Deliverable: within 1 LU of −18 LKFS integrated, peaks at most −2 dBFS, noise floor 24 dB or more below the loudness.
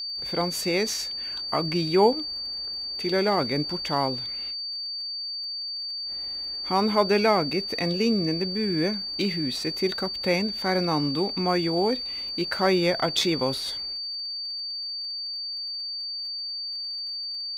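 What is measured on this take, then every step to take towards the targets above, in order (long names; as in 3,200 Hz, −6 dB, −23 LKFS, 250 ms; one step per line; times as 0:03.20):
crackle rate 48 per second; interfering tone 4,600 Hz; level of the tone −30 dBFS; integrated loudness −26.0 LKFS; sample peak −8.0 dBFS; target loudness −18.0 LKFS
→ click removal
notch filter 4,600 Hz, Q 30
level +8 dB
brickwall limiter −2 dBFS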